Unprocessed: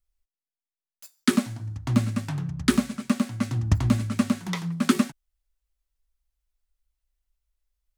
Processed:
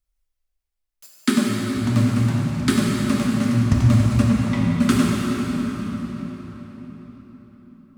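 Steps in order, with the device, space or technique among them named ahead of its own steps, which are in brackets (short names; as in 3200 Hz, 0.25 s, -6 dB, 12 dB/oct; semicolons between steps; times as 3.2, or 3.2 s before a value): 4.22–4.78 Bessel low-pass 2700 Hz; cathedral (reverb RT60 5.0 s, pre-delay 5 ms, DRR -4 dB)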